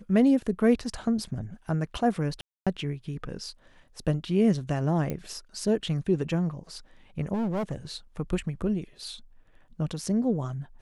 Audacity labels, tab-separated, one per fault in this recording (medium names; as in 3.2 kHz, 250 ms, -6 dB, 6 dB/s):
2.410000	2.670000	dropout 256 ms
5.100000	5.100000	pop -18 dBFS
7.330000	7.760000	clipped -25.5 dBFS